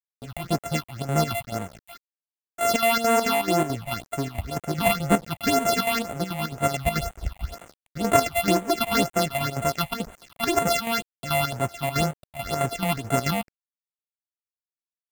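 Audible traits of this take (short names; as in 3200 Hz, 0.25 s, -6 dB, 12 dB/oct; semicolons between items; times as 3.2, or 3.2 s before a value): a buzz of ramps at a fixed pitch in blocks of 64 samples; chopped level 4.6 Hz, depth 60%, duty 70%; a quantiser's noise floor 8-bit, dither none; phasing stages 6, 2 Hz, lowest notch 370–5000 Hz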